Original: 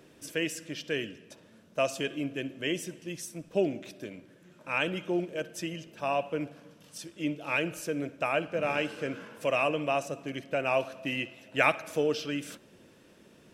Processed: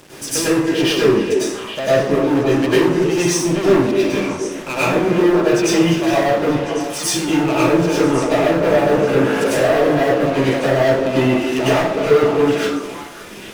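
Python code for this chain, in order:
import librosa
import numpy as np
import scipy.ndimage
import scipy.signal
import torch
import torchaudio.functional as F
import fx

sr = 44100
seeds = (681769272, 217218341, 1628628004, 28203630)

y = fx.env_lowpass_down(x, sr, base_hz=570.0, full_db=-27.0)
y = fx.high_shelf(y, sr, hz=4800.0, db=6.0)
y = fx.leveller(y, sr, passes=5)
y = fx.echo_stepped(y, sr, ms=275, hz=380.0, octaves=1.4, feedback_pct=70, wet_db=-3)
y = fx.rev_plate(y, sr, seeds[0], rt60_s=0.55, hf_ratio=0.85, predelay_ms=85, drr_db=-9.5)
y = F.gain(torch.from_numpy(y), -3.0).numpy()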